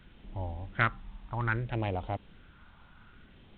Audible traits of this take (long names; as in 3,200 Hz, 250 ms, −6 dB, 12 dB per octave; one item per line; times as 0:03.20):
phaser sweep stages 4, 0.62 Hz, lowest notch 440–1,600 Hz
a quantiser's noise floor 10 bits, dither triangular
G.726